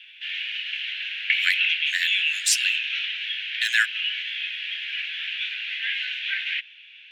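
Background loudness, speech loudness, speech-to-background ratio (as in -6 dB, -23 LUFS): -25.0 LUFS, -25.0 LUFS, 0.0 dB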